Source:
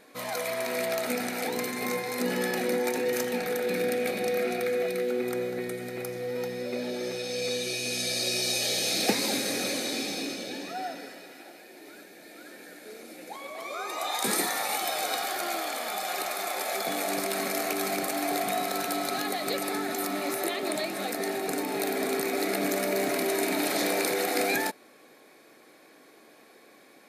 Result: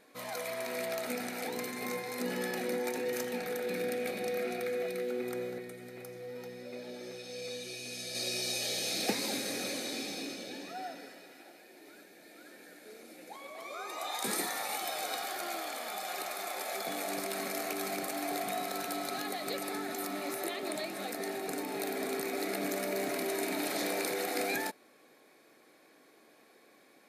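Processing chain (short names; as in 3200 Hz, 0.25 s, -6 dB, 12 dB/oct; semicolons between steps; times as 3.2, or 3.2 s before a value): 5.58–8.15 flange 1.6 Hz, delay 6.1 ms, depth 1.4 ms, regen -71%; gain -6.5 dB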